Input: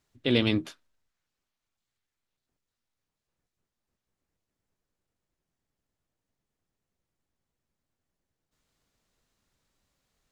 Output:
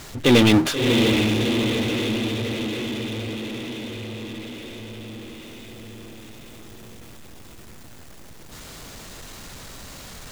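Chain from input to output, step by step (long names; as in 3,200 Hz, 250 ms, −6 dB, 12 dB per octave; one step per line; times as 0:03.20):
feedback delay with all-pass diffusion 652 ms, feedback 46%, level −8 dB
power curve on the samples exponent 0.5
level +3.5 dB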